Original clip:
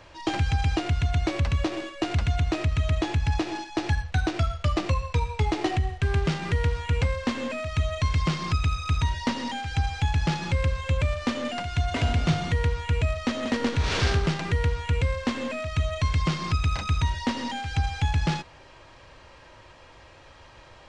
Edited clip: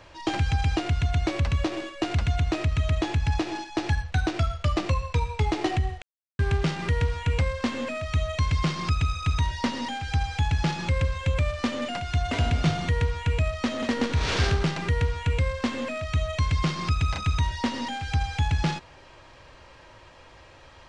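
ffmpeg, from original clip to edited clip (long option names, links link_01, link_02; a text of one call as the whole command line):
ffmpeg -i in.wav -filter_complex "[0:a]asplit=2[link_01][link_02];[link_01]atrim=end=6.02,asetpts=PTS-STARTPTS,afade=type=out:start_time=6.016:duration=0.004:curve=hsin,apad=pad_dur=0.37[link_03];[link_02]atrim=start=6.02,asetpts=PTS-STARTPTS,afade=type=in:duration=0.004:curve=hsin[link_04];[link_03][link_04]concat=n=2:v=0:a=1" out.wav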